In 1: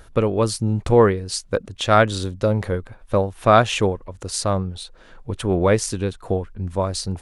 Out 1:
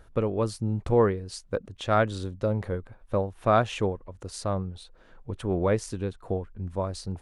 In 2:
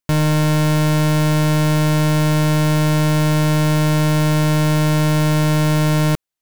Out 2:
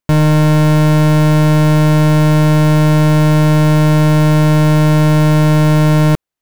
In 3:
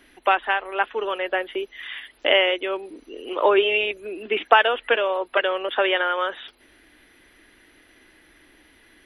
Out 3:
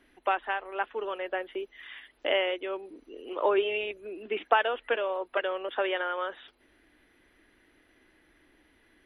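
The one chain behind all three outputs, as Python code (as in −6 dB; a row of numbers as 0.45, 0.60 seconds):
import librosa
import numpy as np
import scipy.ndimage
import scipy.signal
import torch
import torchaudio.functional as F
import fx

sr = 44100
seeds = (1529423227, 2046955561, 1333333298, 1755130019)

y = fx.high_shelf(x, sr, hz=2200.0, db=-7.5)
y = librosa.util.normalize(y) * 10.0 ** (-9 / 20.0)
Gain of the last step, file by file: −7.0, +6.0, −7.0 decibels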